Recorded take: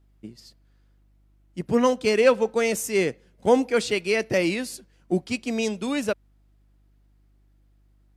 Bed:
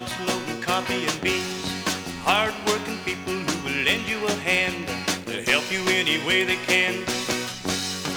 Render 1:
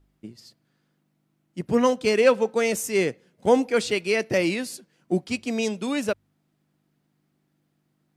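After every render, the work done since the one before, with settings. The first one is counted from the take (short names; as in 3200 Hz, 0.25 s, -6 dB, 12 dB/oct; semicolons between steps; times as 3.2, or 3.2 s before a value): de-hum 50 Hz, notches 2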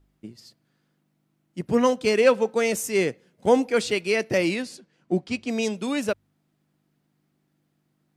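4.62–5.49 air absorption 63 m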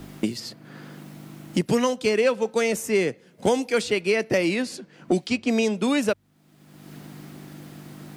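three-band squash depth 100%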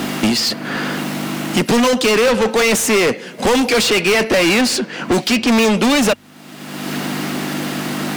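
small resonant body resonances 230/2800 Hz, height 7 dB; overdrive pedal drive 33 dB, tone 6100 Hz, clips at -7 dBFS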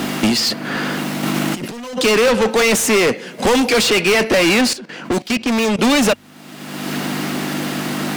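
1.23–2.01 negative-ratio compressor -24 dBFS; 4.73–5.79 level quantiser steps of 16 dB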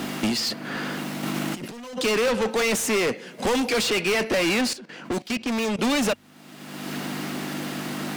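gain -8.5 dB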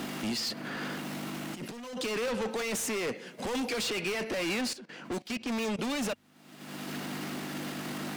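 limiter -27.5 dBFS, peak gain reduction 11.5 dB; upward expander 1.5:1, over -51 dBFS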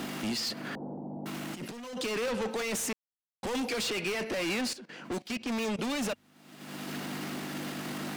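0.75–1.26 Chebyshev low-pass 870 Hz, order 5; 2.93–3.43 mute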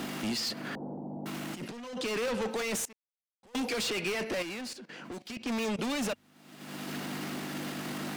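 1.64–2.06 high shelf 9800 Hz -11 dB; 2.85–3.55 gate -30 dBFS, range -25 dB; 4.42–5.37 compressor, threshold -38 dBFS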